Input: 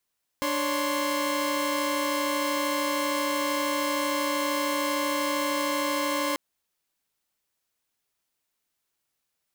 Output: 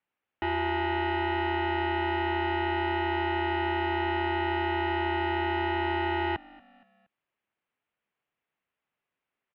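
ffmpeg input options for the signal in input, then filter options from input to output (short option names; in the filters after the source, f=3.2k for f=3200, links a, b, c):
-f lavfi -i "aevalsrc='0.0447*((2*mod(293.66*t,1)-1)+(2*mod(554.37*t,1)-1)+(2*mod(1046.5*t,1)-1))':d=5.94:s=44100"
-filter_complex "[0:a]asplit=4[a][b][c][d];[b]adelay=234,afreqshift=-50,volume=-23dB[e];[c]adelay=468,afreqshift=-100,volume=-29.9dB[f];[d]adelay=702,afreqshift=-150,volume=-36.9dB[g];[a][e][f][g]amix=inputs=4:normalize=0,highpass=f=320:t=q:w=0.5412,highpass=f=320:t=q:w=1.307,lowpass=f=3.1k:t=q:w=0.5176,lowpass=f=3.1k:t=q:w=0.7071,lowpass=f=3.1k:t=q:w=1.932,afreqshift=-210"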